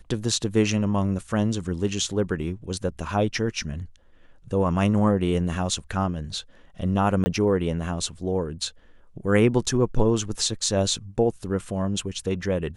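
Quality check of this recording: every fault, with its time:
7.24–7.26 gap 20 ms

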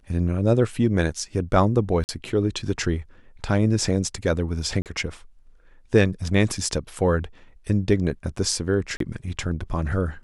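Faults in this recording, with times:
2.04–2.09 gap 49 ms
4.82–4.86 gap 38 ms
8.97–9 gap 33 ms

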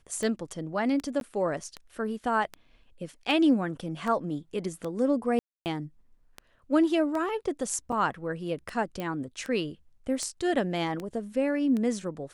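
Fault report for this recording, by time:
tick 78 rpm -21 dBFS
1.2–1.21 gap 12 ms
5.39–5.66 gap 0.269 s
7.92 gap 4.9 ms
9 pop -21 dBFS

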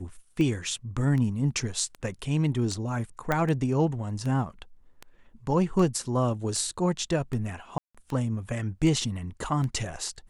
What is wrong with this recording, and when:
tick 78 rpm -22 dBFS
3.32 pop -12 dBFS
7.78–7.95 gap 0.166 s

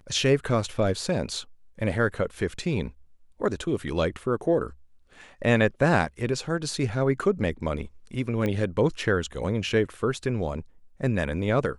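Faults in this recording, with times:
8.46 pop -16 dBFS

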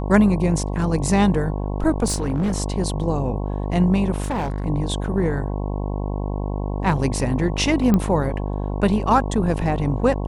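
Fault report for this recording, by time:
buzz 50 Hz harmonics 22 -25 dBFS
2.06–2.56 clipped -17.5 dBFS
4.22–4.66 clipped -20.5 dBFS
7.94 pop -8 dBFS

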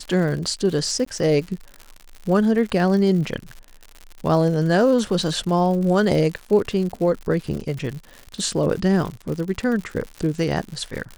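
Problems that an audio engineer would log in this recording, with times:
crackle 120/s -29 dBFS
1.05–1.06 gap

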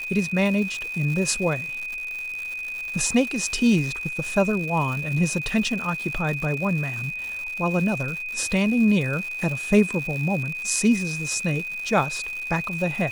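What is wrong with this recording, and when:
crackle 220/s -30 dBFS
tone 2500 Hz -29 dBFS

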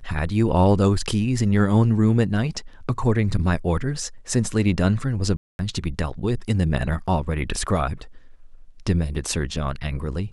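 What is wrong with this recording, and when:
5.37–5.59 gap 0.221 s

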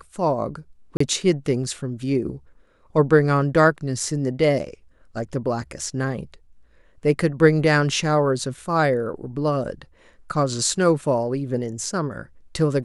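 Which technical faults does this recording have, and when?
0.97–1 gap 34 ms

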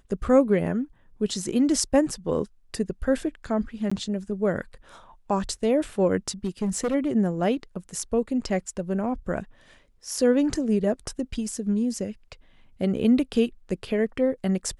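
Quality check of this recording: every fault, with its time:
3.9–3.92 gap 15 ms
6.44–6.95 clipped -21.5 dBFS

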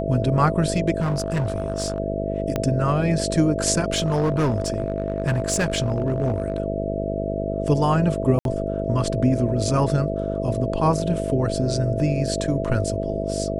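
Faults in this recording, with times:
buzz 50 Hz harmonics 13 -27 dBFS
tone 660 Hz -28 dBFS
1–2 clipped -19 dBFS
2.56 pop -10 dBFS
3.94–6.6 clipped -16.5 dBFS
8.39–8.45 gap 62 ms

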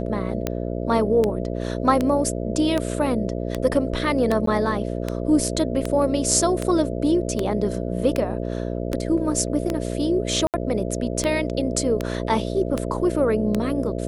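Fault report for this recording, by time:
buzz 60 Hz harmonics 11 -27 dBFS
tick 78 rpm -9 dBFS
4.46–4.47 gap 13 ms
10.47–10.54 gap 68 ms

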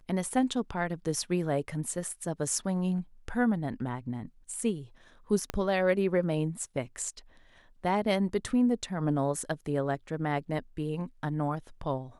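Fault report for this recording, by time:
5.5 pop -17 dBFS

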